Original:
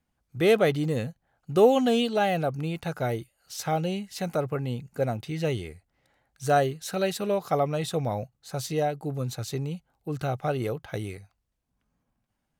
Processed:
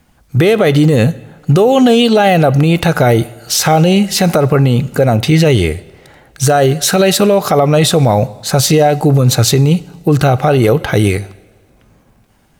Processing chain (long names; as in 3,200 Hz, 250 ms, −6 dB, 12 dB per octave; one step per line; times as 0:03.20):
downward compressor, threshold −27 dBFS, peak gain reduction 13 dB
convolution reverb, pre-delay 3 ms, DRR 19 dB
boost into a limiter +26.5 dB
level −1 dB